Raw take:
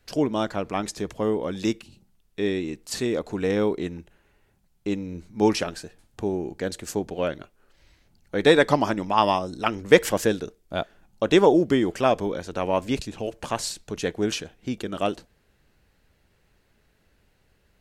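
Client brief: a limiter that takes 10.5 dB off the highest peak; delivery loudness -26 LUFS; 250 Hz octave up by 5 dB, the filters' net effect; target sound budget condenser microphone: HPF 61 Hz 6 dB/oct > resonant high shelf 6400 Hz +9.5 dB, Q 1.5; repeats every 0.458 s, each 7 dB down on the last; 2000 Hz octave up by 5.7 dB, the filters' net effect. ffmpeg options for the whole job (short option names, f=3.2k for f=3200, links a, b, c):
-af "equalizer=f=250:t=o:g=7,equalizer=f=2k:t=o:g=7.5,alimiter=limit=-7.5dB:level=0:latency=1,highpass=f=61:p=1,highshelf=f=6.4k:t=q:w=1.5:g=9.5,aecho=1:1:458|916|1374|1832|2290:0.447|0.201|0.0905|0.0407|0.0183,volume=-3dB"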